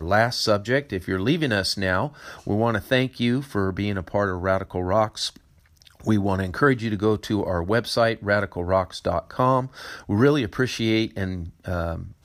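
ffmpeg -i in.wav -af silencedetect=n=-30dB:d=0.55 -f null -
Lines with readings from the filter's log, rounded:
silence_start: 5.29
silence_end: 6.06 | silence_duration: 0.77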